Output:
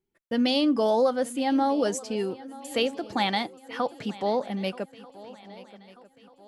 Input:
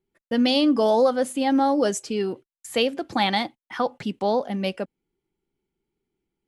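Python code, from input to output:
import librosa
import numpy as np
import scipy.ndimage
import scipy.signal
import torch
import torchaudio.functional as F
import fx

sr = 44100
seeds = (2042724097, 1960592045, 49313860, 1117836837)

y = fx.echo_swing(x, sr, ms=1238, ratio=3, feedback_pct=43, wet_db=-19)
y = F.gain(torch.from_numpy(y), -3.5).numpy()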